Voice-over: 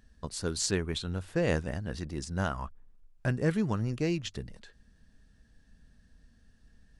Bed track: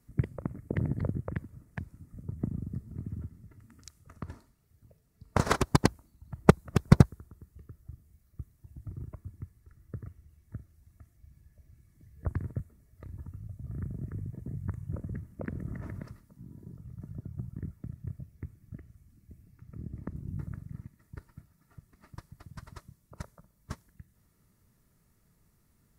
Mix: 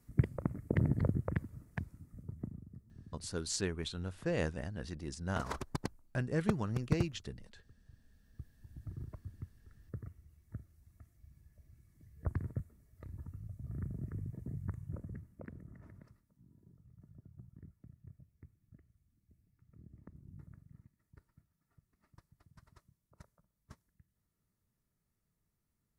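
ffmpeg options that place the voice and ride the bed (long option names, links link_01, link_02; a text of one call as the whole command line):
ffmpeg -i stem1.wav -i stem2.wav -filter_complex "[0:a]adelay=2900,volume=-6dB[link_01];[1:a]volume=11.5dB,afade=type=out:start_time=1.64:duration=1:silence=0.177828,afade=type=in:start_time=7.84:duration=0.89:silence=0.266073,afade=type=out:start_time=14.5:duration=1.19:silence=0.251189[link_02];[link_01][link_02]amix=inputs=2:normalize=0" out.wav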